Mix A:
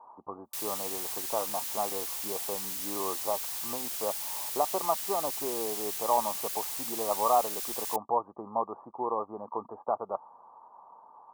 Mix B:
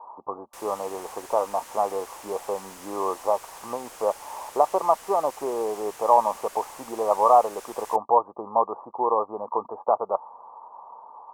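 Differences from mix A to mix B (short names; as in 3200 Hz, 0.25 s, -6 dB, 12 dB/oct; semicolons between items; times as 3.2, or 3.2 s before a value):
background: add air absorption 53 m; master: add graphic EQ 500/1000/4000 Hz +8/+8/-8 dB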